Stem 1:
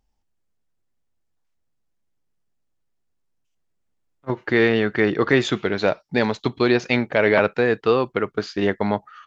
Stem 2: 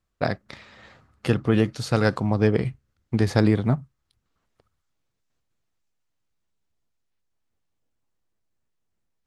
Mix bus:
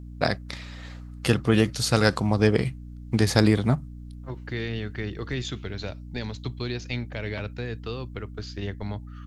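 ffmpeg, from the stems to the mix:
-filter_complex "[0:a]asubboost=boost=11:cutoff=57,acrossover=split=250|3000[a][b][c];[b]acompressor=threshold=-39dB:ratio=2.5[d];[a][d][c]amix=inputs=3:normalize=0,volume=-5dB[e];[1:a]highshelf=f=2.9k:g=11.5,aeval=exprs='val(0)+0.0126*(sin(2*PI*60*n/s)+sin(2*PI*2*60*n/s)/2+sin(2*PI*3*60*n/s)/3+sin(2*PI*4*60*n/s)/4+sin(2*PI*5*60*n/s)/5)':c=same,volume=-0.5dB[f];[e][f]amix=inputs=2:normalize=0"

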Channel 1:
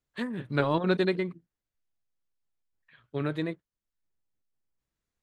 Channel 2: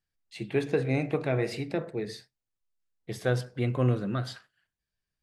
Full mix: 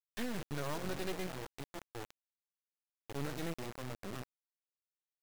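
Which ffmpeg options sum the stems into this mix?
-filter_complex "[0:a]volume=1dB[a];[1:a]lowpass=f=2k:p=1,alimiter=limit=-22dB:level=0:latency=1:release=206,volume=-10dB,asplit=2[b][c];[c]apad=whole_len=230629[d];[a][d]sidechaincompress=threshold=-52dB:ratio=4:attack=25:release=145[e];[e][b]amix=inputs=2:normalize=0,asoftclip=type=tanh:threshold=-29dB,acrusher=bits=4:dc=4:mix=0:aa=0.000001"

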